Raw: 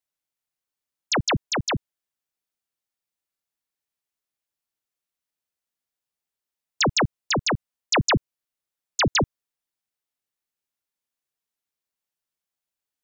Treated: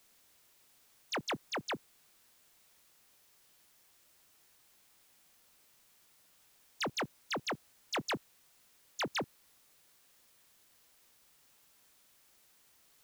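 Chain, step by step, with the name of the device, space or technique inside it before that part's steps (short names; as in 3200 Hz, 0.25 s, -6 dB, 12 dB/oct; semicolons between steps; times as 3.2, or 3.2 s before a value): tape answering machine (BPF 320–3400 Hz; soft clip -23.5 dBFS, distortion -12 dB; wow and flutter; white noise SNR 21 dB); gain -7.5 dB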